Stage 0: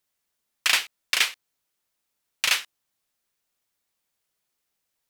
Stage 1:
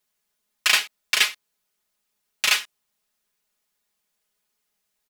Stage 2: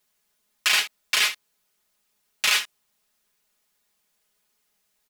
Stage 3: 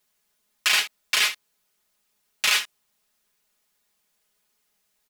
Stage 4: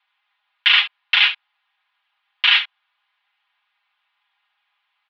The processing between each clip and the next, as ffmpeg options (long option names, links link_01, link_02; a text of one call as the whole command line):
ffmpeg -i in.wav -af "aecho=1:1:4.8:0.87" out.wav
ffmpeg -i in.wav -af "alimiter=limit=-14.5dB:level=0:latency=1:release=11,volume=4.5dB" out.wav
ffmpeg -i in.wav -af anull out.wav
ffmpeg -i in.wav -af "highpass=frequency=370:width_type=q:width=0.5412,highpass=frequency=370:width_type=q:width=1.307,lowpass=frequency=3100:width_type=q:width=0.5176,lowpass=frequency=3100:width_type=q:width=0.7071,lowpass=frequency=3100:width_type=q:width=1.932,afreqshift=390,volume=9dB" out.wav